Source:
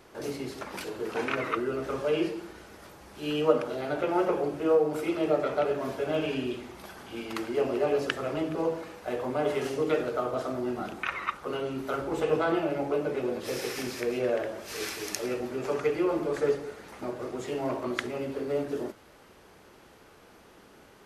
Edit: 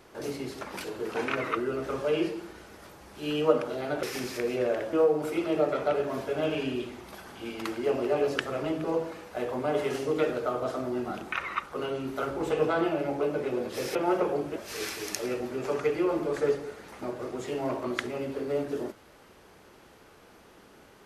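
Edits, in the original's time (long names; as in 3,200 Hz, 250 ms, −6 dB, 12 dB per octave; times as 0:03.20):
0:04.03–0:04.64: swap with 0:13.66–0:14.56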